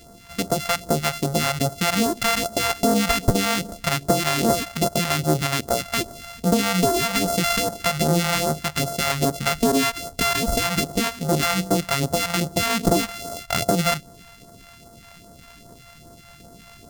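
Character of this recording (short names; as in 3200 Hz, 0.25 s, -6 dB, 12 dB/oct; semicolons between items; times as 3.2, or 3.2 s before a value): a buzz of ramps at a fixed pitch in blocks of 64 samples; phasing stages 2, 2.5 Hz, lowest notch 300–2500 Hz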